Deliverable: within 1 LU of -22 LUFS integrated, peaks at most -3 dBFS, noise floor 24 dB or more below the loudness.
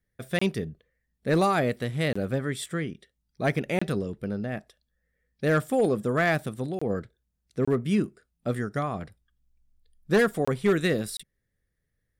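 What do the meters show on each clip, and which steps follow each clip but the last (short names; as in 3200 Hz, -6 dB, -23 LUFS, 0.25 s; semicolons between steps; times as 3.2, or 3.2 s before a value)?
clipped 0.4%; flat tops at -15.5 dBFS; dropouts 7; longest dropout 25 ms; loudness -27.5 LUFS; peak -15.5 dBFS; loudness target -22.0 LUFS
-> clip repair -15.5 dBFS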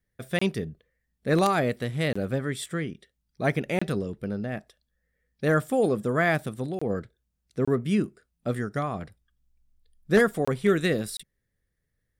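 clipped 0.0%; dropouts 7; longest dropout 25 ms
-> interpolate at 0.39/2.13/3.79/6.79/7.65/10.45/11.17, 25 ms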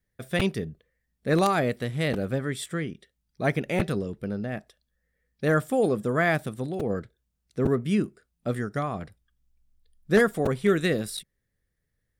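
dropouts 0; loudness -27.0 LUFS; peak -6.5 dBFS; loudness target -22.0 LUFS
-> gain +5 dB; limiter -3 dBFS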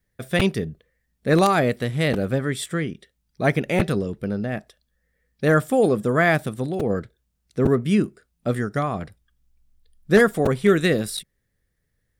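loudness -22.0 LUFS; peak -3.0 dBFS; noise floor -74 dBFS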